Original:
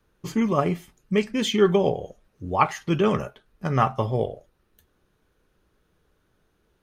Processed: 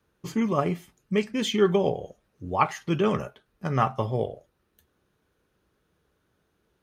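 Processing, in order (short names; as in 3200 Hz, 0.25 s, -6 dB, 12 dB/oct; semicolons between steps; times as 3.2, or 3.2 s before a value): HPF 60 Hz; gain -2.5 dB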